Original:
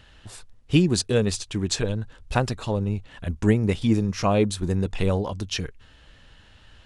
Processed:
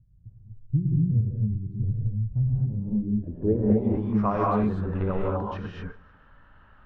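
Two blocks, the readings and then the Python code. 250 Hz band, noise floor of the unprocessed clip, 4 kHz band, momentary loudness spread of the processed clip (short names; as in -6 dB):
-1.5 dB, -53 dBFS, under -20 dB, 7 LU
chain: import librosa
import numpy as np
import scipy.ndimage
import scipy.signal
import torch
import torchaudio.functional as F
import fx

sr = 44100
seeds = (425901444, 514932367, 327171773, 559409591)

y = fx.echo_feedback(x, sr, ms=153, feedback_pct=52, wet_db=-23)
y = fx.rev_gated(y, sr, seeds[0], gate_ms=270, shape='rising', drr_db=-3.5)
y = fx.filter_sweep_lowpass(y, sr, from_hz=130.0, to_hz=1300.0, start_s=2.58, end_s=4.3, q=3.1)
y = y * 10.0 ** (-9.0 / 20.0)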